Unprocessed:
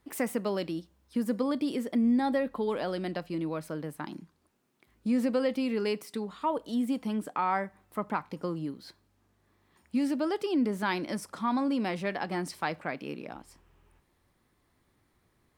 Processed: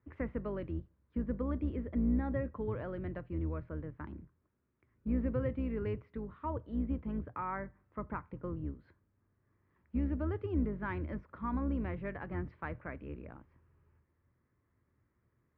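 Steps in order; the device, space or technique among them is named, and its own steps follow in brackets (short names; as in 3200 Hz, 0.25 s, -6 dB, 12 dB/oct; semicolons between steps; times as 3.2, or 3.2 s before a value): sub-octave bass pedal (octaver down 2 oct, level 0 dB; speaker cabinet 63–2000 Hz, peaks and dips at 80 Hz +8 dB, 120 Hz +8 dB, 770 Hz -9 dB); gain -7.5 dB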